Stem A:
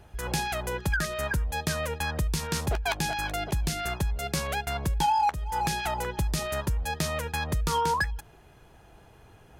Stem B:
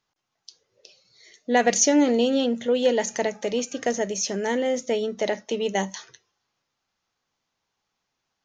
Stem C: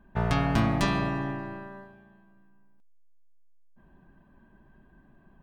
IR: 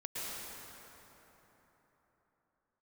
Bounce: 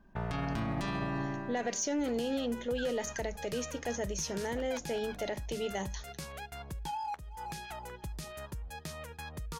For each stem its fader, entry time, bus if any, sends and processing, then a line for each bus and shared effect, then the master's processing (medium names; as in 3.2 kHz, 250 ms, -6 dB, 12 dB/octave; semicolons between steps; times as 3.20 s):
-13.5 dB, 1.85 s, no send, none
-8.5 dB, 0.00 s, no send, saturation -9 dBFS, distortion -25 dB
-3.5 dB, 0.00 s, no send, none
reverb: none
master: peak limiter -25.5 dBFS, peak gain reduction 11.5 dB